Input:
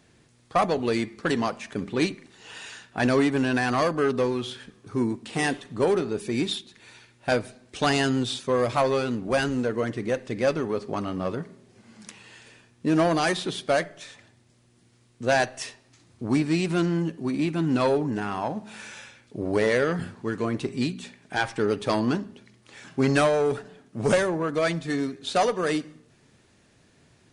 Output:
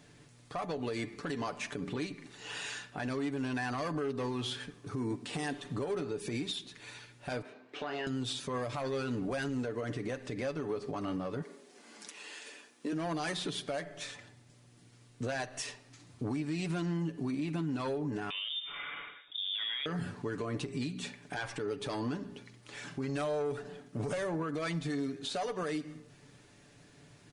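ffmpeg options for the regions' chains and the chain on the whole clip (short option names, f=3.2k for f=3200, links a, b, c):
-filter_complex "[0:a]asettb=1/sr,asplit=3[a][b][c];[a]atrim=end=7.424[d];[b]atrim=start=7.42:end=8.07,asetpts=PTS-STARTPTS,afade=t=in:d=0.004:c=qsin,afade=t=out:st=0.646:d=0.004:c=qsin,highpass=320,lowpass=2.4k,acompressor=threshold=-41dB:ratio=2:attack=3.2:release=140:knee=1:detection=peak,asplit=2[e][f];[f]adelay=27,volume=-7dB[g];[e][g]amix=inputs=2:normalize=0,atrim=end_sample=28665[h];[c]atrim=start=8.066[i];[d][h]acrossfade=d=0.004:c1=hsin:c2=qsin[j];[j][i]acrossfade=d=0.004:c1=qsin:c2=hsin,asettb=1/sr,asplit=3[k][l][m];[k]atrim=end=11.424[n];[l]atrim=start=11.42:end=12.93,asetpts=PTS-STARTPTS,afade=t=in:d=0.004:c=qsin,afade=t=out:st=1.506:d=0.004:c=qsin,highpass=f=270:w=0.5412,highpass=f=270:w=1.3066,highshelf=f=4.3k:g=4.5[o];[m]atrim=start=12.926[p];[n][o]acrossfade=d=0.004:c1=hsin:c2=qsin[q];[q][p]acrossfade=d=0.004:c1=qsin:c2=hsin,asettb=1/sr,asplit=3[r][s][t];[r]atrim=end=18.304[u];[s]atrim=start=18.3:end=19.86,asetpts=PTS-STARTPTS,afade=t=in:d=0.004:c=qsin,afade=t=out:st=1.556:d=0.004:c=qsin,lowpass=f=3.2k:t=q:w=0.5098,lowpass=f=3.2k:t=q:w=0.6013,lowpass=f=3.2k:t=q:w=0.9,lowpass=f=3.2k:t=q:w=2.563,afreqshift=-3800,acompressor=threshold=-33dB:ratio=2:attack=3.2:release=140:knee=1:detection=peak[v];[t]atrim=start=19.856[w];[u][v]acrossfade=d=0.004:c1=hsin:c2=qsin[x];[x][w]acrossfade=d=0.004:c1=qsin:c2=hsin,aecho=1:1:6.9:0.49,acompressor=threshold=-28dB:ratio=6,alimiter=level_in=3dB:limit=-24dB:level=0:latency=1:release=119,volume=-3dB"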